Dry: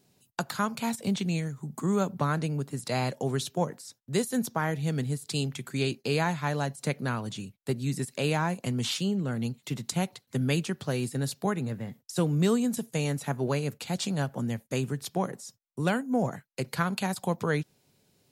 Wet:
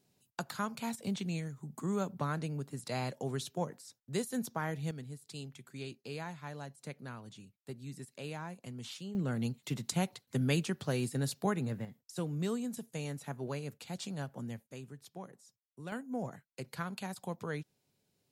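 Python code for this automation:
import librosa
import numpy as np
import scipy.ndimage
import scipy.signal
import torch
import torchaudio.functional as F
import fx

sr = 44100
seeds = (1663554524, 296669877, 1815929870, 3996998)

y = fx.gain(x, sr, db=fx.steps((0.0, -7.5), (4.91, -15.0), (9.15, -3.5), (11.85, -10.5), (14.71, -17.5), (15.92, -11.0)))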